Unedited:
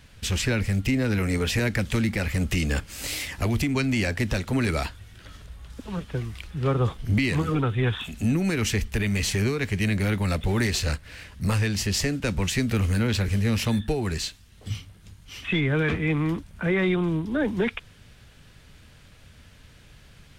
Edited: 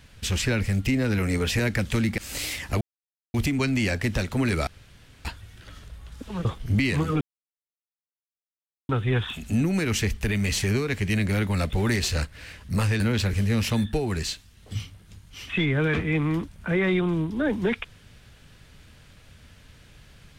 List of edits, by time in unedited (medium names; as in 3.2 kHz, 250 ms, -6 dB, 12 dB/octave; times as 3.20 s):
2.18–2.87 s: delete
3.50 s: insert silence 0.53 s
4.83 s: insert room tone 0.58 s
6.03–6.84 s: delete
7.60 s: insert silence 1.68 s
11.71–12.95 s: delete